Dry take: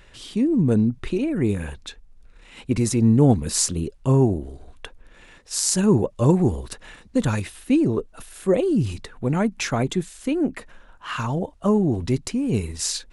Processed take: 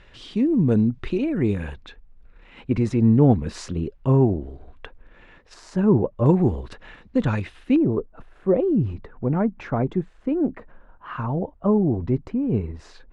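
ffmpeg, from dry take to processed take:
-af "asetnsamples=n=441:p=0,asendcmd='1.76 lowpass f 2400;5.54 lowpass f 1400;6.26 lowpass f 2900;7.76 lowpass f 1200',lowpass=4.1k"

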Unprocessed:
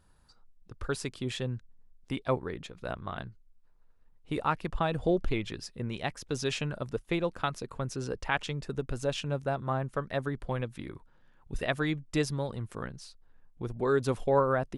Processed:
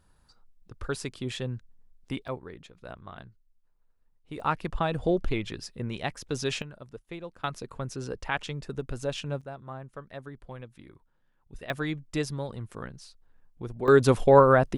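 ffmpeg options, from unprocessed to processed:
-af "asetnsamples=n=441:p=0,asendcmd='2.28 volume volume -6.5dB;4.4 volume volume 1.5dB;6.62 volume volume -10dB;7.44 volume volume -0.5dB;9.41 volume volume -9.5dB;11.7 volume volume -1dB;13.88 volume volume 8.5dB',volume=0.5dB"

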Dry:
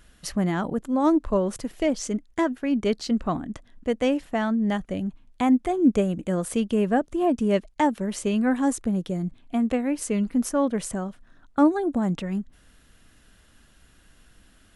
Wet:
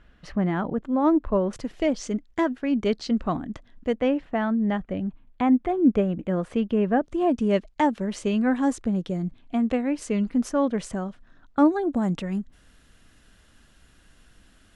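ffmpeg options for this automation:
-af "asetnsamples=n=441:p=0,asendcmd='1.53 lowpass f 5400;3.96 lowpass f 2600;7.03 lowpass f 5800;11.95 lowpass f 10000',lowpass=2.5k"

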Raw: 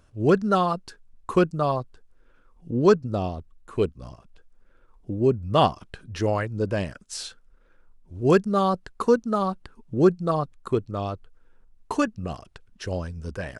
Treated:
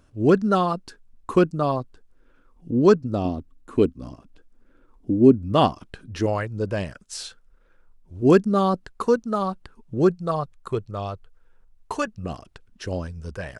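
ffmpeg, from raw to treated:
-af "asetnsamples=n=441:p=0,asendcmd='3.25 equalizer g 13.5;5.52 equalizer g 6;6.26 equalizer g -2;8.22 equalizer g 8.5;8.86 equalizer g -1.5;10.11 equalizer g -8;12.24 equalizer g 4;13.07 equalizer g -4.5',equalizer=f=270:t=o:w=0.71:g=6"

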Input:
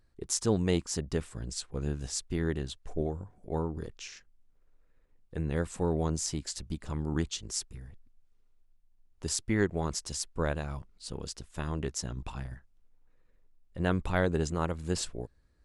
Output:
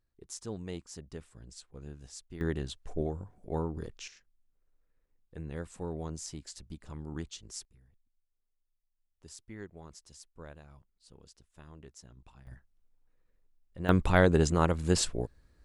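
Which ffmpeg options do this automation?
-af "asetnsamples=n=441:p=0,asendcmd='2.41 volume volume -1dB;4.08 volume volume -8.5dB;7.65 volume volume -17.5dB;12.47 volume volume -6dB;13.89 volume volume 5dB',volume=-12.5dB"

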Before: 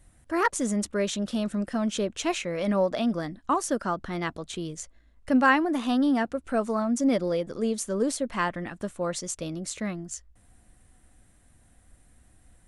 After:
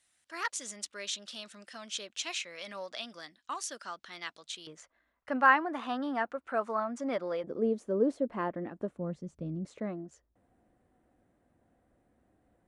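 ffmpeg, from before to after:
-af "asetnsamples=n=441:p=0,asendcmd='4.67 bandpass f 1200;7.44 bandpass f 400;8.97 bandpass f 160;9.65 bandpass f 460',bandpass=f=4.2k:t=q:w=1:csg=0"

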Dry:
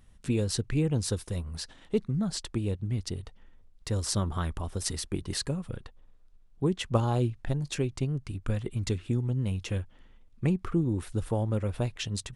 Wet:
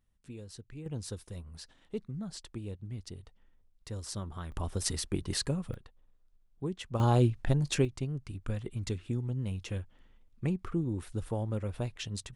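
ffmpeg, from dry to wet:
-af "asetnsamples=n=441:p=0,asendcmd='0.86 volume volume -10dB;4.52 volume volume -0.5dB;5.74 volume volume -8.5dB;7 volume volume 2.5dB;7.85 volume volume -5dB',volume=-18dB"

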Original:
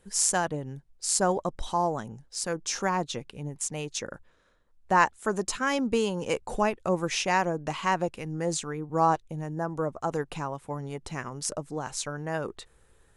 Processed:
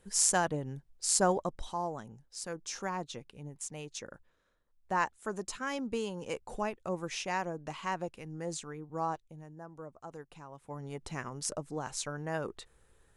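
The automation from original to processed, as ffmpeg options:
-af "volume=10.5dB,afade=t=out:st=1.25:d=0.49:silence=0.446684,afade=t=out:st=8.72:d=0.86:silence=0.421697,afade=t=in:st=10.47:d=0.54:silence=0.237137"

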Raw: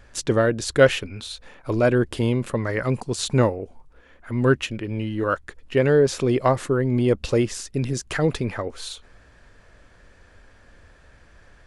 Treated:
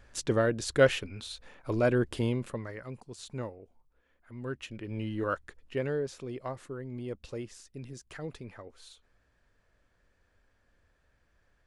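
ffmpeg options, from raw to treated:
-af "volume=5dB,afade=t=out:st=2.21:d=0.59:silence=0.251189,afade=t=in:st=4.52:d=0.57:silence=0.251189,afade=t=out:st=5.09:d=1.07:silence=0.266073"

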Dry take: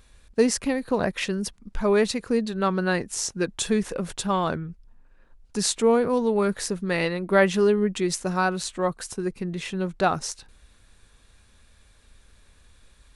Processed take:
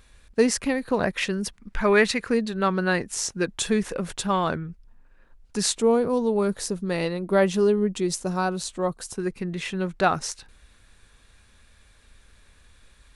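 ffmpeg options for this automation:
-af "asetnsamples=n=441:p=0,asendcmd='1.58 equalizer g 10.5;2.34 equalizer g 2.5;5.75 equalizer g -6.5;9.14 equalizer g 3.5',equalizer=f=1.9k:t=o:w=1.4:g=3"

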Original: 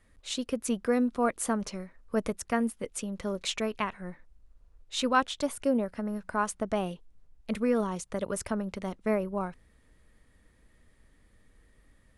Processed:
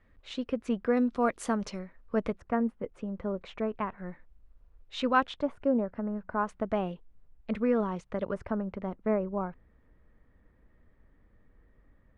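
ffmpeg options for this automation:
-af "asetnsamples=n=441:p=0,asendcmd='0.97 lowpass f 5500;1.79 lowpass f 3000;2.38 lowpass f 1300;3.98 lowpass f 2900;5.34 lowpass f 1400;6.49 lowpass f 2400;8.34 lowpass f 1500',lowpass=2.5k"

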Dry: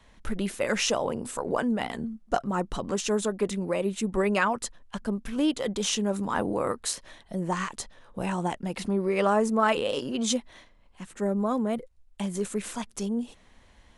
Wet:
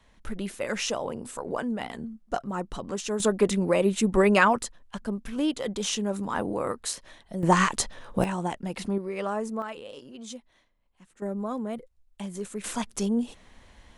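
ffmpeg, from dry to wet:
-af "asetnsamples=n=441:p=0,asendcmd='3.2 volume volume 5dB;4.63 volume volume -1.5dB;7.43 volume volume 9dB;8.24 volume volume -1dB;8.98 volume volume -7dB;9.62 volume volume -14dB;11.22 volume volume -5dB;12.64 volume volume 3.5dB',volume=-3.5dB"

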